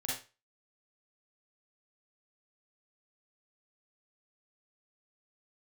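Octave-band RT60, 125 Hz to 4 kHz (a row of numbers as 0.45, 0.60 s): 0.35, 0.25, 0.30, 0.30, 0.30, 0.30 s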